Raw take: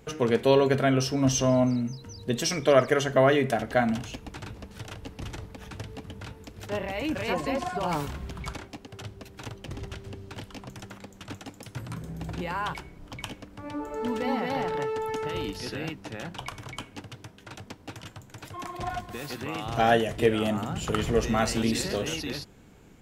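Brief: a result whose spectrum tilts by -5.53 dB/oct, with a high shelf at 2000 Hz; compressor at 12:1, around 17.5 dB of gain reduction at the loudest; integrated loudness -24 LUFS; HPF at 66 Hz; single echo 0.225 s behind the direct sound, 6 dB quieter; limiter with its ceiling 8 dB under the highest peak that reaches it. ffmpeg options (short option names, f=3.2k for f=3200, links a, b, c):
-af "highpass=66,highshelf=f=2k:g=-8,acompressor=threshold=-34dB:ratio=12,alimiter=level_in=6dB:limit=-24dB:level=0:latency=1,volume=-6dB,aecho=1:1:225:0.501,volume=16.5dB"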